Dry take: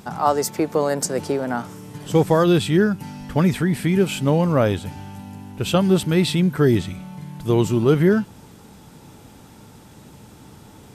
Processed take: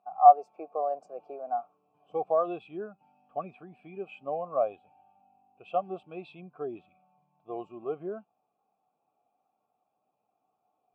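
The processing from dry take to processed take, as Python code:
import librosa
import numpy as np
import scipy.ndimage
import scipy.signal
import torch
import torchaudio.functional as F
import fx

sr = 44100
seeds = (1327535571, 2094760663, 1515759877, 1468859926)

y = fx.vowel_filter(x, sr, vowel='a')
y = fx.spectral_expand(y, sr, expansion=1.5)
y = y * librosa.db_to_amplitude(6.0)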